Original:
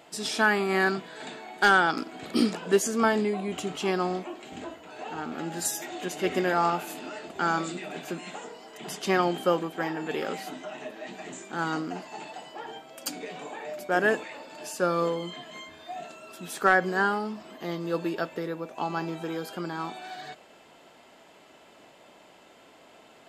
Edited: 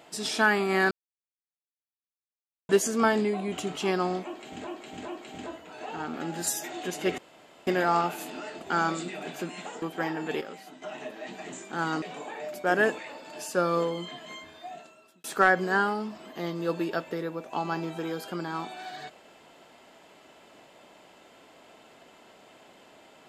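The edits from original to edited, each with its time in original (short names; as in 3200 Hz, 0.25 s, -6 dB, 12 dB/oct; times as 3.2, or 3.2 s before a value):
0.91–2.69 mute
4.26–4.67 loop, 3 plays
6.36 insert room tone 0.49 s
8.51–9.62 cut
10.21–10.62 gain -9.5 dB
11.82–13.27 cut
15.68–16.49 fade out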